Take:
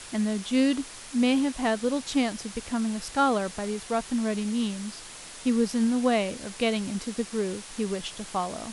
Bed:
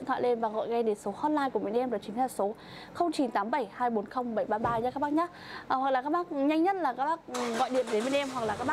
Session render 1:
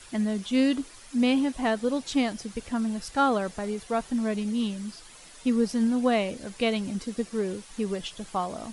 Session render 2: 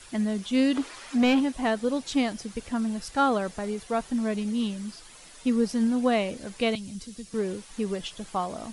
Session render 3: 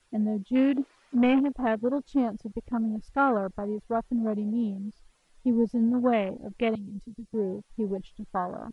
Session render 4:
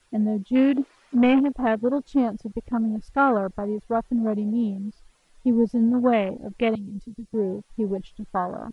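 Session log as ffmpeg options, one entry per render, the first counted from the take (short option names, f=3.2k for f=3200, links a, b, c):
-af "afftdn=nr=9:nf=-43"
-filter_complex "[0:a]asplit=3[a][b][c];[a]afade=t=out:st=0.74:d=0.02[d];[b]asplit=2[e][f];[f]highpass=f=720:p=1,volume=18dB,asoftclip=type=tanh:threshold=-13dB[g];[e][g]amix=inputs=2:normalize=0,lowpass=f=2.1k:p=1,volume=-6dB,afade=t=in:st=0.74:d=0.02,afade=t=out:st=1.39:d=0.02[h];[c]afade=t=in:st=1.39:d=0.02[i];[d][h][i]amix=inputs=3:normalize=0,asettb=1/sr,asplit=3[j][k][l];[j]atrim=end=6.754[m];[k]atrim=start=6.75:end=7.34,asetpts=PTS-STARTPTS,afade=t=in:d=0.004:c=qsin,afade=t=out:st=0.586:d=0.004:c=qsin,acrossover=split=170|3000[n][o][p];[o]acompressor=threshold=-57dB:ratio=2:attack=3.2:release=140:knee=2.83:detection=peak[q];[n][q][p]amix=inputs=3:normalize=0[r];[l]atrim=start=7.336[s];[m][r]acrossfade=d=0.004:c1=hsin:c2=qsin[t];[t][s]acrossfade=d=0.004:c1=qsin:c2=hsin"
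-af "afwtdn=0.0224,highshelf=f=3.6k:g=-7.5"
-af "volume=4dB"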